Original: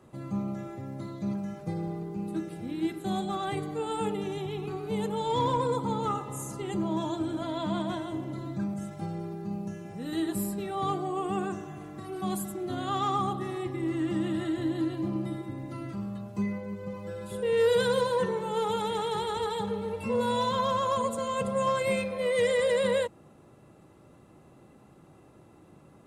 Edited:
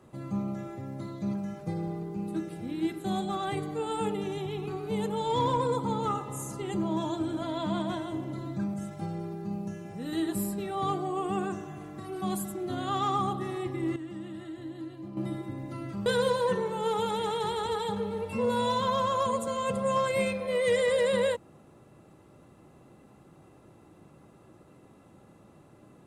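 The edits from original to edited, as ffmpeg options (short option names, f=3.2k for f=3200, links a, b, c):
-filter_complex "[0:a]asplit=4[a][b][c][d];[a]atrim=end=13.962[e];[b]atrim=start=13.958:end=15.172,asetpts=PTS-STARTPTS,volume=-10.5dB[f];[c]atrim=start=15.168:end=16.062[g];[d]atrim=start=17.768[h];[e][f]acrossfade=d=0.004:c1=hsin:c2=hsin[i];[i][g]acrossfade=d=0.004:c1=hsin:c2=hsin[j];[j][h]acrossfade=d=0.004:c1=hsin:c2=hsin"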